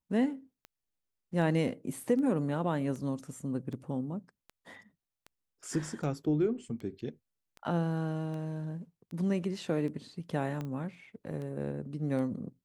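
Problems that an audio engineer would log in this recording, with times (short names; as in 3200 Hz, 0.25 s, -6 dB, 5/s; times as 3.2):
tick 78 rpm -31 dBFS
10.61 pop -25 dBFS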